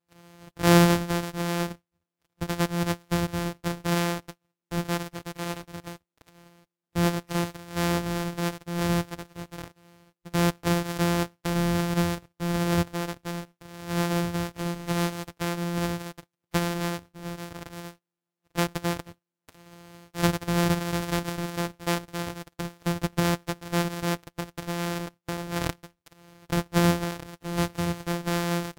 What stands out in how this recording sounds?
a buzz of ramps at a fixed pitch in blocks of 256 samples
Ogg Vorbis

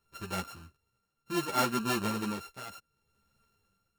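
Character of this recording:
a buzz of ramps at a fixed pitch in blocks of 32 samples
tremolo triangle 0.66 Hz, depth 85%
a shimmering, thickened sound

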